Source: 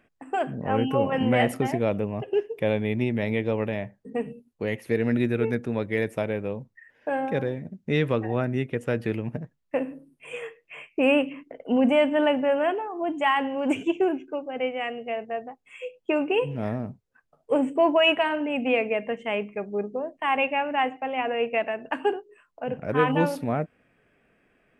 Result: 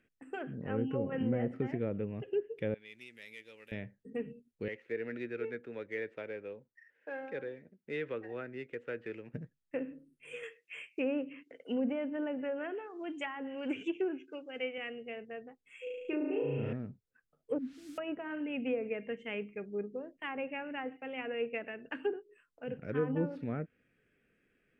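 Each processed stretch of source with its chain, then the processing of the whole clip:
2.74–3.72 differentiator + sample leveller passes 1
4.68–9.34 median filter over 9 samples + three-band isolator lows -17 dB, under 370 Hz, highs -14 dB, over 3400 Hz
10.43–14.78 HPF 270 Hz 6 dB/oct + high shelf 2300 Hz +9.5 dB
15.83–16.73 flutter echo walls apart 6.2 m, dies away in 1.4 s + compressor 1.5:1, threshold -26 dBFS
17.58–17.98 Butterworth band-pass 210 Hz, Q 2.8 + air absorption 100 m + requantised 8-bit, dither triangular
whole clip: treble ducked by the level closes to 860 Hz, closed at -18 dBFS; band shelf 830 Hz -10.5 dB 1.1 oct; gain -8.5 dB

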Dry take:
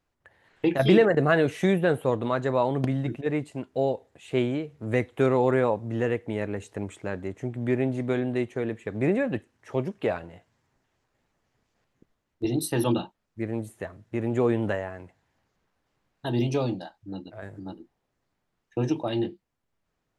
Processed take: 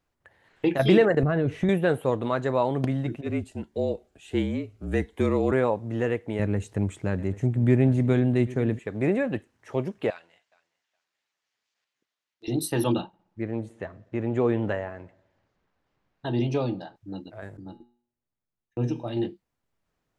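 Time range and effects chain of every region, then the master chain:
1.23–1.69 RIAA curve playback + compressor 3:1, threshold -22 dBFS
3.22–5.52 frequency shift -38 Hz + cascading phaser rising 1.4 Hz
6.39–8.79 tone controls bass +11 dB, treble +2 dB + echo 0.791 s -18.5 dB
10.1–12.48 band-pass 4100 Hz, Q 0.82 + feedback echo 0.417 s, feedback 17%, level -22 dB
13.01–16.96 air absorption 97 m + darkening echo 61 ms, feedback 66%, low-pass 3000 Hz, level -23 dB
17.57–19.17 gate -47 dBFS, range -12 dB + low shelf 280 Hz +6.5 dB + resonator 120 Hz, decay 0.52 s
whole clip: dry

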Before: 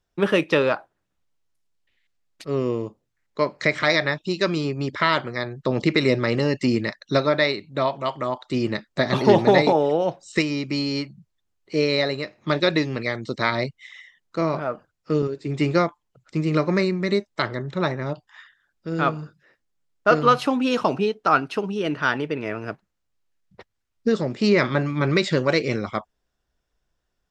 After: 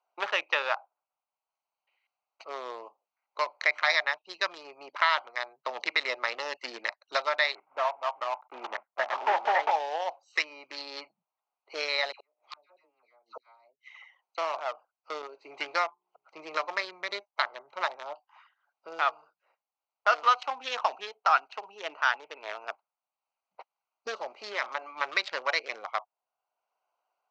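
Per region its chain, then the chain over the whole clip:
7.55–9.71 block floating point 3-bit + LPF 1900 Hz 24 dB/oct
12.12–14.38 dispersion lows, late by 85 ms, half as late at 1200 Hz + flipped gate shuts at -21 dBFS, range -36 dB
15.84–16.87 notches 60/120/180/240/300/360/420 Hz + upward compressor, threshold -39 dBFS + mismatched tape noise reduction decoder only
24.41–24.94 brick-wall FIR high-pass 170 Hz + compressor 2:1, threshold -23 dBFS
whole clip: Wiener smoothing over 25 samples; Chebyshev band-pass 770–6200 Hz, order 3; three-band squash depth 40%

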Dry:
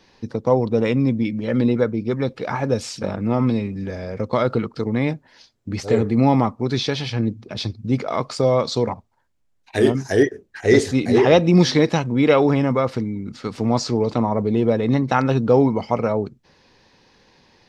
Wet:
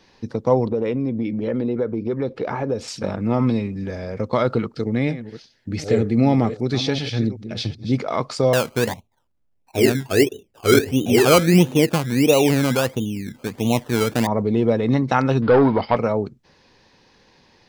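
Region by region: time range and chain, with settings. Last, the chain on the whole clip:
0.67–2.88 LPF 3500 Hz 6 dB/oct + bell 420 Hz +7.5 dB 1.2 oct + compressor 3:1, threshold -21 dBFS
4.7–7.95 reverse delay 0.381 s, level -12.5 dB + bell 1000 Hz -11 dB 0.49 oct
8.53–14.27 LPF 1000 Hz 24 dB/oct + decimation with a swept rate 19×, swing 60% 1.5 Hz
15.42–15.97 bell 170 Hz -5 dB 1.1 oct + sample leveller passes 2 + rippled Chebyshev low-pass 5000 Hz, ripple 3 dB
whole clip: dry

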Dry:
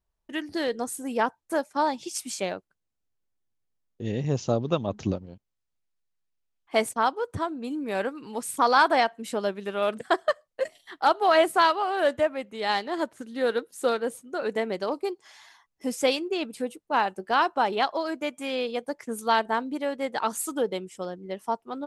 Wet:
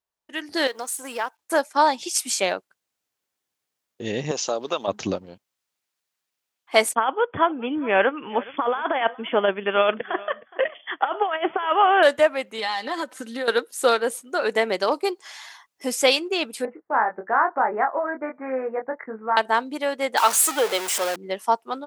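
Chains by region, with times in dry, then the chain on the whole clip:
0.67–1.39 G.711 law mismatch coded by A + HPF 560 Hz 6 dB/oct + compressor 2:1, threshold -37 dBFS
4.31–4.88 HPF 350 Hz + high shelf 5600 Hz +5 dB + compressor 2.5:1, threshold -28 dBFS
6.95–12.03 negative-ratio compressor -25 dBFS, ratio -0.5 + brick-wall FIR low-pass 3500 Hz + echo 0.418 s -20.5 dB
12.58–13.48 comb 3.9 ms, depth 69% + compressor 16:1, threshold -30 dBFS
16.65–19.37 steep low-pass 2000 Hz 72 dB/oct + compressor 1.5:1, threshold -37 dBFS + doubler 23 ms -5 dB
20.17–21.16 zero-crossing step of -29.5 dBFS + HPF 410 Hz
whole clip: AGC gain up to 11.5 dB; HPF 730 Hz 6 dB/oct

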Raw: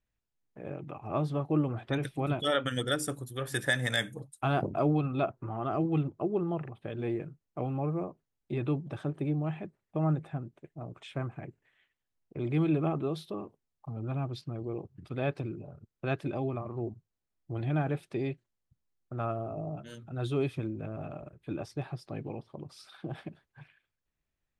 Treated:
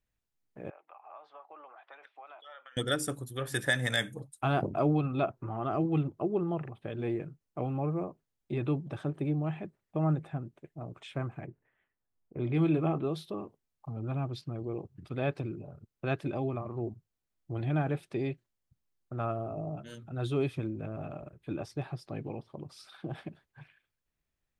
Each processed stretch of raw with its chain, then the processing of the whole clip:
0.7–2.77 HPF 770 Hz 24 dB/oct + compressor 4:1, threshold -42 dBFS + tape spacing loss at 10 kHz 38 dB
11.46–13.05 low-pass opened by the level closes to 1300 Hz, open at -23 dBFS + doubler 24 ms -11 dB
whole clip: dry

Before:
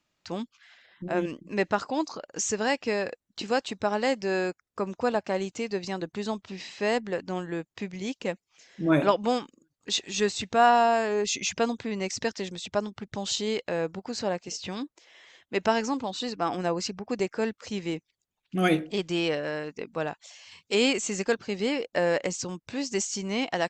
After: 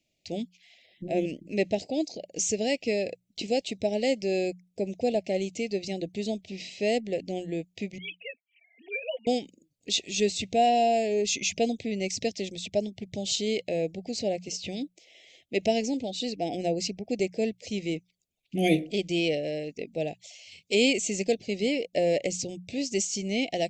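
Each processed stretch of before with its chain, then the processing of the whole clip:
7.98–9.27 sine-wave speech + HPF 1300 Hz + comb 4.3 ms, depth 86%
whole clip: elliptic band-stop 680–2200 Hz, stop band 80 dB; notches 60/120/180 Hz; gain +1.5 dB

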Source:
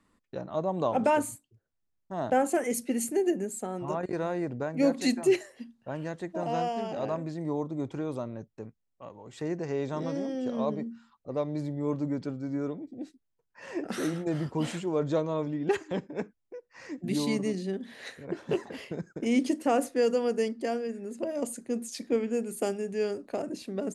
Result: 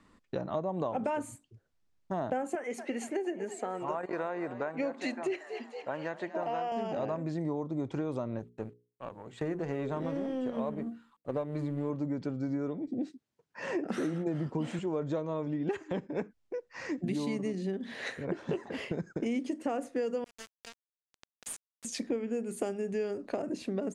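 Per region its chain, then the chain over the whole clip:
2.55–6.72 band-pass 1400 Hz, Q 0.54 + frequency-shifting echo 0.232 s, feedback 60%, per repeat +54 Hz, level -17.5 dB
8.39–11.9 G.711 law mismatch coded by A + bell 5400 Hz -10.5 dB 0.56 oct + notches 60/120/180/240/300/360/420/480 Hz
12.88–14.79 HPF 150 Hz + low shelf 320 Hz +7.5 dB
20.24–21.85 pre-emphasis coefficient 0.97 + sample gate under -39.5 dBFS
whole clip: LPF 7000 Hz 12 dB/oct; dynamic EQ 4600 Hz, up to -6 dB, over -56 dBFS, Q 1.3; compressor 6:1, threshold -37 dBFS; gain +6.5 dB

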